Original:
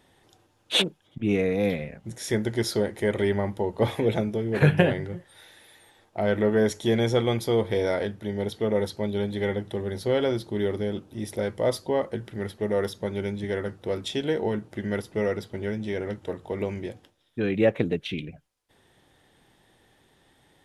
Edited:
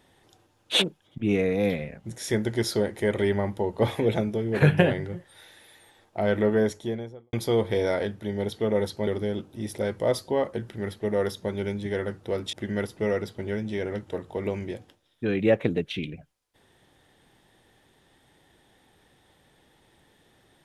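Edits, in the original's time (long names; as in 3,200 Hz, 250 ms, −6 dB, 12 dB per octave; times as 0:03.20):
0:06.42–0:07.33: fade out and dull
0:09.07–0:10.65: remove
0:14.11–0:14.68: remove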